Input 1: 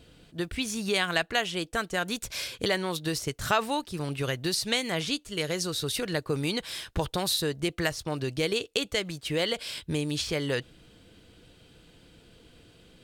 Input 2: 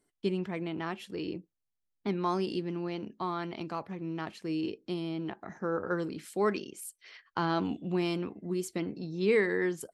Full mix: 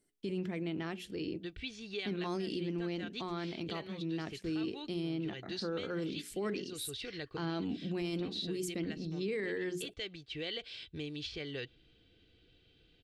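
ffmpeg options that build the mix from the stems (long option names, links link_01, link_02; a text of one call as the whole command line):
ffmpeg -i stem1.wav -i stem2.wav -filter_complex "[0:a]lowpass=frequency=3700:width=0.5412,lowpass=frequency=3700:width=1.3066,aemphasis=mode=production:type=75fm,aecho=1:1:2.6:0.37,adelay=1050,volume=-10.5dB[link_01];[1:a]bandreject=frequency=60:width_type=h:width=6,bandreject=frequency=120:width_type=h:width=6,bandreject=frequency=180:width_type=h:width=6,bandreject=frequency=240:width_type=h:width=6,bandreject=frequency=300:width_type=h:width=6,bandreject=frequency=360:width_type=h:width=6,bandreject=frequency=420:width_type=h:width=6,volume=0dB,asplit=2[link_02][link_03];[link_03]apad=whole_len=621123[link_04];[link_01][link_04]sidechaincompress=threshold=-42dB:ratio=5:attack=41:release=196[link_05];[link_05][link_02]amix=inputs=2:normalize=0,equalizer=frequency=1000:width_type=o:width=1.2:gain=-10,alimiter=level_in=4.5dB:limit=-24dB:level=0:latency=1:release=12,volume=-4.5dB" out.wav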